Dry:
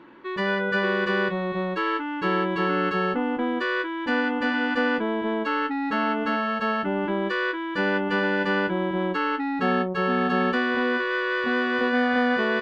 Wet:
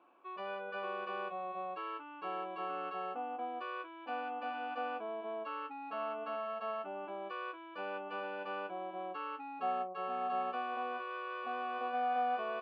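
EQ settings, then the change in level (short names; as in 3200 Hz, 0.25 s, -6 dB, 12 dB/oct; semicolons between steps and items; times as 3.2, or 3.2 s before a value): vowel filter a; HPF 160 Hz; -2.5 dB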